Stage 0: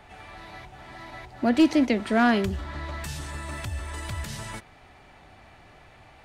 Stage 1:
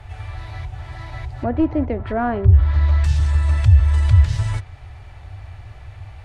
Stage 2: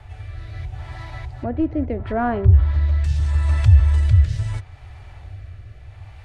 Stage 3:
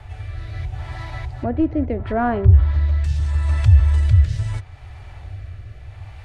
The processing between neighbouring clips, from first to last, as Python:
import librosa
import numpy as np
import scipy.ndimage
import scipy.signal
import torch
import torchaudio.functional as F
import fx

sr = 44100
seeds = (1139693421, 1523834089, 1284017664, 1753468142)

y1 = fx.env_lowpass_down(x, sr, base_hz=980.0, full_db=-21.0)
y1 = fx.low_shelf_res(y1, sr, hz=140.0, db=13.0, q=3.0)
y1 = y1 * 10.0 ** (3.5 / 20.0)
y2 = fx.rotary(y1, sr, hz=0.75)
y3 = fx.rider(y2, sr, range_db=3, speed_s=2.0)